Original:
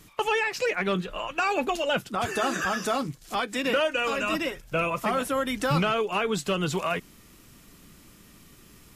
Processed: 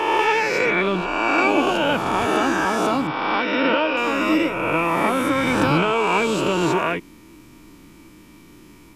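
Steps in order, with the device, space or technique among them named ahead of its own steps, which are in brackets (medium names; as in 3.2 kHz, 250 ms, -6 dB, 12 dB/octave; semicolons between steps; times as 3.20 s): reverse spectral sustain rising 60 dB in 1.93 s; 3.07–3.97 s: Chebyshev low-pass 5.5 kHz, order 6; inside a helmet (treble shelf 5.4 kHz -6 dB; small resonant body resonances 310/930/2300 Hz, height 12 dB, ringing for 40 ms)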